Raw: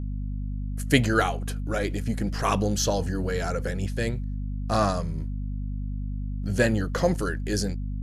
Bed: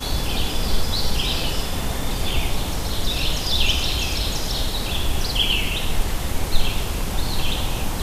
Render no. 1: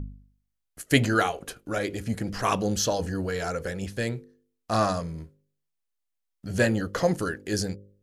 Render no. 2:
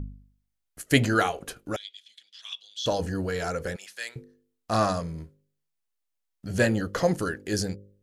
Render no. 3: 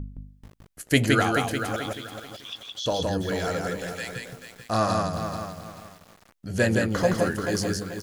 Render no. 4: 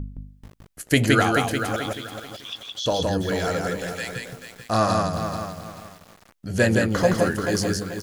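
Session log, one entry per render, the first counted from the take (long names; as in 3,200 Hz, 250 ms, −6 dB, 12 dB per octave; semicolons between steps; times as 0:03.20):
hum removal 50 Hz, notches 11
0:01.76–0:02.86: four-pole ladder band-pass 3,500 Hz, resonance 90%; 0:03.76–0:04.16: high-pass filter 1,400 Hz
single-tap delay 167 ms −3 dB; feedback echo at a low word length 435 ms, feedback 35%, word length 7 bits, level −8 dB
level +3 dB; brickwall limiter −3 dBFS, peak gain reduction 3 dB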